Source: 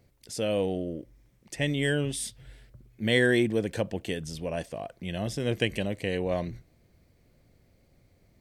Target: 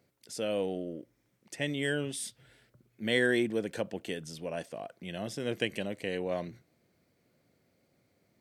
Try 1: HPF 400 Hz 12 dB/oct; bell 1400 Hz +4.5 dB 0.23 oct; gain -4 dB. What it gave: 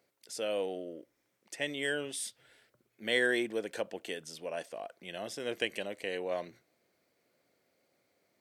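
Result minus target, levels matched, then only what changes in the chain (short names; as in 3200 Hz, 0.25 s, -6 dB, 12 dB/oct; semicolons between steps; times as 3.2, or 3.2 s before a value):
125 Hz band -11.0 dB
change: HPF 170 Hz 12 dB/oct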